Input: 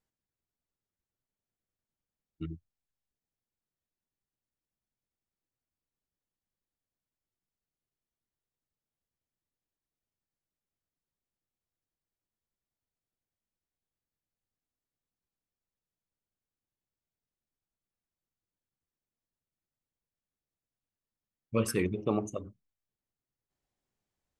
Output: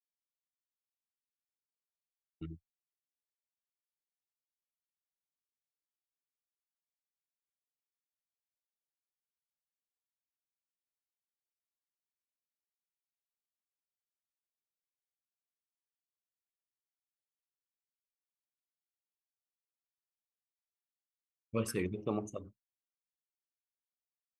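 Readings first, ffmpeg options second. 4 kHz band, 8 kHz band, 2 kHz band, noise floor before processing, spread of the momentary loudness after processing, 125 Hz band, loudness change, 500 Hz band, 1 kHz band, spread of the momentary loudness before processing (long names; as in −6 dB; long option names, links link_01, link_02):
−5.5 dB, −5.5 dB, −5.5 dB, below −85 dBFS, 15 LU, −5.5 dB, −5.5 dB, −5.5 dB, −5.5 dB, 15 LU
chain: -af "agate=range=-33dB:threshold=-41dB:ratio=3:detection=peak,volume=-5.5dB"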